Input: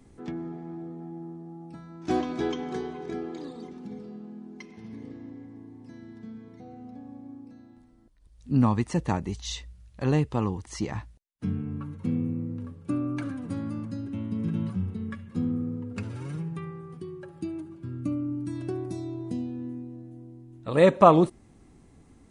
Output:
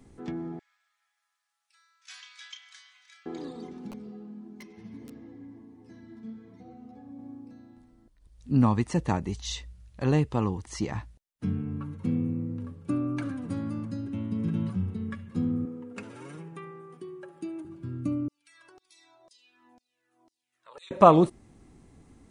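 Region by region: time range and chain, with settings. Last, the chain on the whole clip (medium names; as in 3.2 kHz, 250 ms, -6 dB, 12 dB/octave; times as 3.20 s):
0.59–3.26 s: Bessel high-pass 2.6 kHz, order 6 + doubling 33 ms -8 dB
3.91–7.19 s: integer overflow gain 30.5 dB + three-phase chorus
15.65–17.65 s: high-pass 300 Hz + peaking EQ 4.5 kHz -4.5 dB 0.56 oct
18.28–20.91 s: LFO high-pass saw down 2 Hz 660–5500 Hz + compression 2:1, threshold -51 dBFS + Shepard-style flanger falling 1.5 Hz
whole clip: none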